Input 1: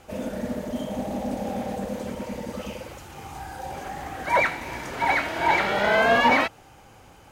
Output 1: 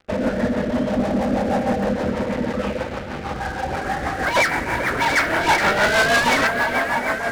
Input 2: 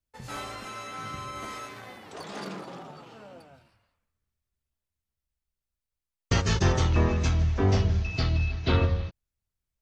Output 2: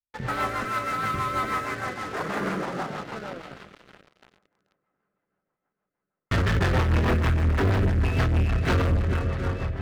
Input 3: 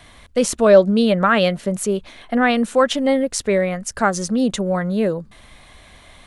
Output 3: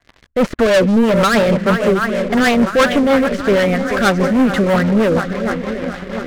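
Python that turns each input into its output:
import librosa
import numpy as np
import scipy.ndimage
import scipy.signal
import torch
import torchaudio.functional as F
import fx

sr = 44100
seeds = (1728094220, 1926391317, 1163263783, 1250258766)

y = fx.lowpass_res(x, sr, hz=1700.0, q=1.9)
y = fx.echo_swing(y, sr, ms=715, ratio=1.5, feedback_pct=57, wet_db=-13.5)
y = fx.leveller(y, sr, passes=5)
y = fx.rotary(y, sr, hz=6.3)
y = y * librosa.db_to_amplitude(-6.5)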